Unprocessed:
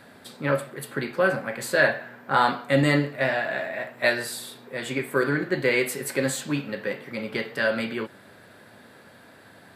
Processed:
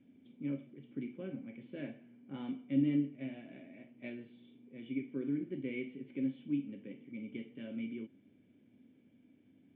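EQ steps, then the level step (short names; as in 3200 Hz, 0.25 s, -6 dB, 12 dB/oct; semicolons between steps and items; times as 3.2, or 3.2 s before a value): vocal tract filter i; high shelf 3000 Hz -7.5 dB; -4.0 dB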